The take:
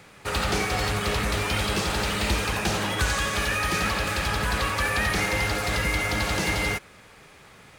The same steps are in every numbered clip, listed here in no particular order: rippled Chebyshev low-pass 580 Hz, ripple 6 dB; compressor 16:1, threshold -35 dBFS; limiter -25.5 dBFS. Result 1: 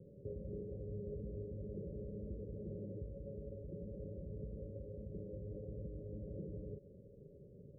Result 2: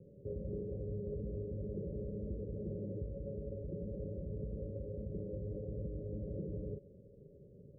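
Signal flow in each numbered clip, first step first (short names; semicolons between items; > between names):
limiter > compressor > rippled Chebyshev low-pass; limiter > rippled Chebyshev low-pass > compressor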